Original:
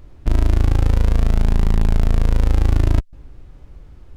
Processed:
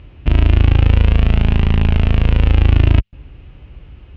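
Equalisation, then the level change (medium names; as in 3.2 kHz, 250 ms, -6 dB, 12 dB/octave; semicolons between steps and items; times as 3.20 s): high-pass 51 Hz 12 dB/octave; resonant low-pass 2.8 kHz, resonance Q 4.5; bass shelf 180 Hz +6.5 dB; +2.0 dB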